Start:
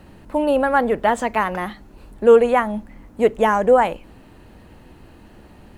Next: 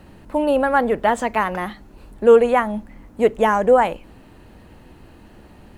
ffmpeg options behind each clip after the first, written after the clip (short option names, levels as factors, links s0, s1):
-af anull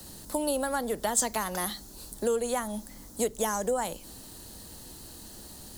-filter_complex "[0:a]acrossover=split=92|230[s0][s1][s2];[s0]acompressor=threshold=0.00631:ratio=4[s3];[s1]acompressor=threshold=0.0126:ratio=4[s4];[s2]acompressor=threshold=0.0631:ratio=4[s5];[s3][s4][s5]amix=inputs=3:normalize=0,aexciter=amount=13.9:drive=3.9:freq=3800,volume=0.596"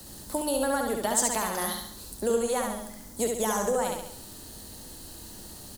-af "aecho=1:1:69|138|207|276|345|414|483:0.668|0.334|0.167|0.0835|0.0418|0.0209|0.0104"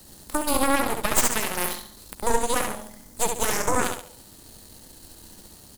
-af "aeval=exprs='0.335*(cos(1*acos(clip(val(0)/0.335,-1,1)))-cos(1*PI/2))+0.15*(cos(6*acos(clip(val(0)/0.335,-1,1)))-cos(6*PI/2))+0.0168*(cos(7*acos(clip(val(0)/0.335,-1,1)))-cos(7*PI/2))':c=same"